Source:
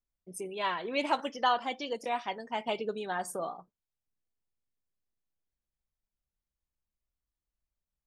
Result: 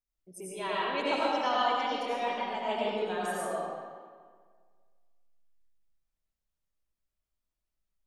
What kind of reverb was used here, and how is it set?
comb and all-pass reverb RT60 1.7 s, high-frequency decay 0.75×, pre-delay 55 ms, DRR −7 dB
level −5.5 dB

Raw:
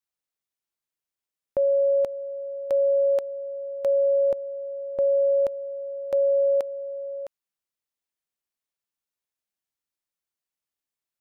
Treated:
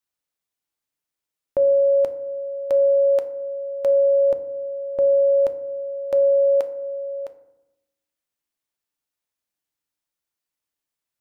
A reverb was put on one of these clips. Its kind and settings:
feedback delay network reverb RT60 0.9 s, low-frequency decay 1.45×, high-frequency decay 0.4×, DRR 9 dB
level +3 dB

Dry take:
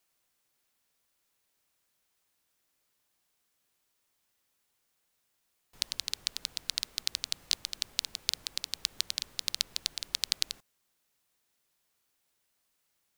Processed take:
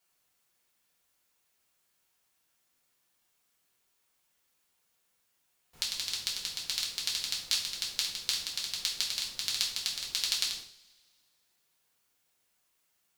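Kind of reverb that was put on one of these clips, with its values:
coupled-rooms reverb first 0.46 s, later 2 s, from −25 dB, DRR −4.5 dB
level −3.5 dB

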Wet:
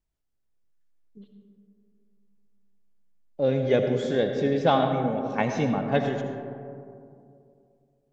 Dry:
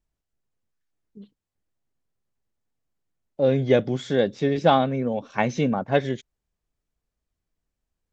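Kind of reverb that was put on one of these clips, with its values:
comb and all-pass reverb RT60 2.5 s, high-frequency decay 0.3×, pre-delay 40 ms, DRR 4.5 dB
level −3.5 dB

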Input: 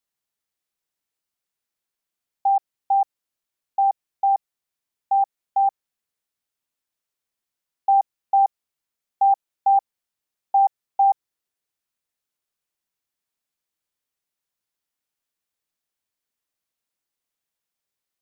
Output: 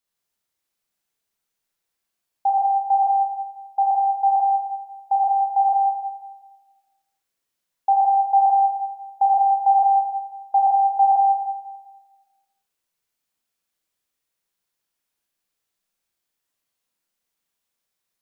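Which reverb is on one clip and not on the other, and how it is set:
four-comb reverb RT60 1.3 s, combs from 33 ms, DRR −3 dB

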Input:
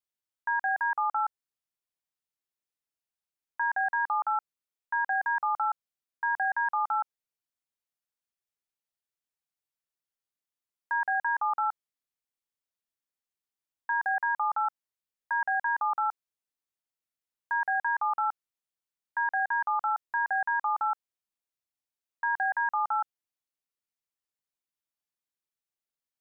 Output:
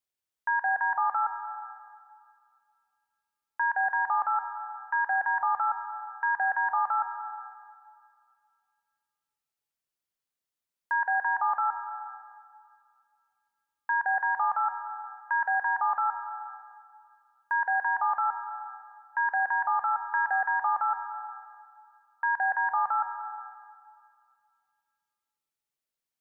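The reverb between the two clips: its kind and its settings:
dense smooth reverb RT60 2.2 s, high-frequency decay 0.95×, pre-delay 110 ms, DRR 7.5 dB
level +1.5 dB

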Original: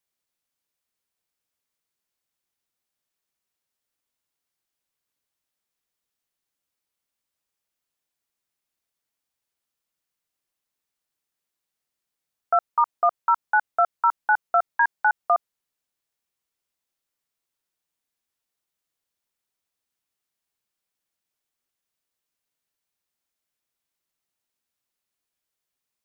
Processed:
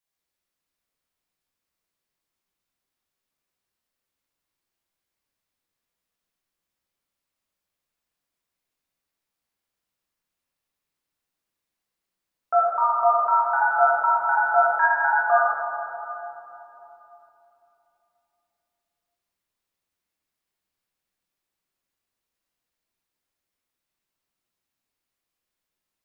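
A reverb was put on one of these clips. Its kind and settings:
rectangular room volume 180 cubic metres, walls hard, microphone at 1.1 metres
level −6 dB

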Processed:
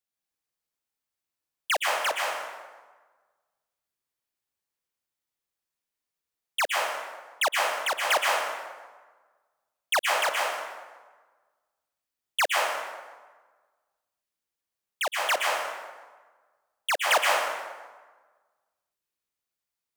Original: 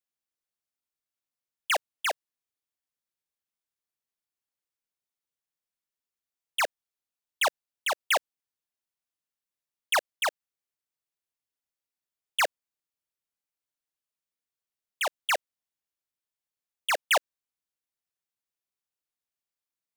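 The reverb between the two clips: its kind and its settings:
dense smooth reverb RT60 1.4 s, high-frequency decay 0.65×, pre-delay 105 ms, DRR −2 dB

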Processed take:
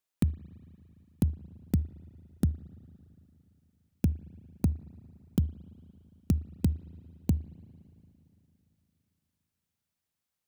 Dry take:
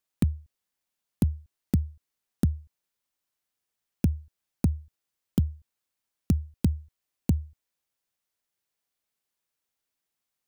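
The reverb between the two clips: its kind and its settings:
spring reverb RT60 3.2 s, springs 37/57 ms, chirp 25 ms, DRR 17 dB
level −2.5 dB

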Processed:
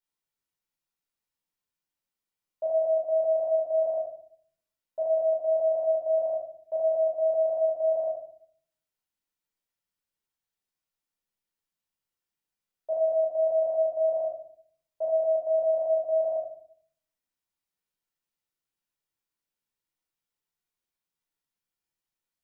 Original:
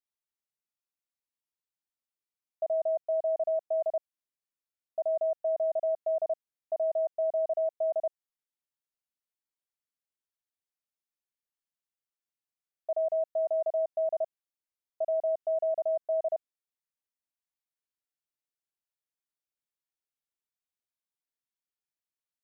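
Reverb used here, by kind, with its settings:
rectangular room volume 740 cubic metres, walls furnished, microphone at 4.6 metres
level −1.5 dB

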